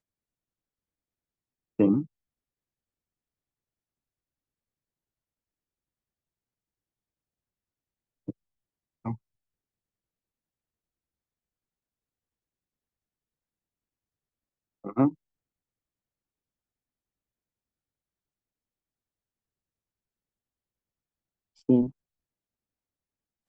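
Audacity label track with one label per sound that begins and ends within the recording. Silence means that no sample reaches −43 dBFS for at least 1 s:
1.790000	2.050000	sound
8.280000	9.150000	sound
14.840000	15.130000	sound
21.690000	21.900000	sound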